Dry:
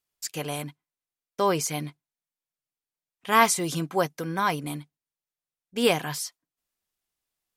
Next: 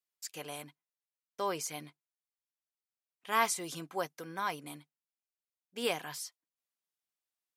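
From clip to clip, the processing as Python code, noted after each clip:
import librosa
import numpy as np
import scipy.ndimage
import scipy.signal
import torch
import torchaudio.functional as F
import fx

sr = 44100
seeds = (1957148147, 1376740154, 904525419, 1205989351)

y = fx.highpass(x, sr, hz=390.0, slope=6)
y = y * librosa.db_to_amplitude(-9.0)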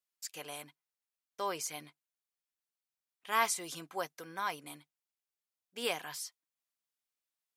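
y = fx.low_shelf(x, sr, hz=420.0, db=-7.0)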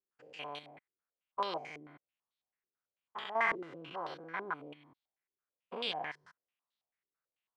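y = fx.spec_steps(x, sr, hold_ms=200)
y = fx.filter_held_lowpass(y, sr, hz=9.1, low_hz=390.0, high_hz=3800.0)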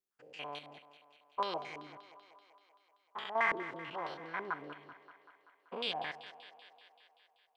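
y = fx.echo_thinned(x, sr, ms=192, feedback_pct=69, hz=230.0, wet_db=-14.0)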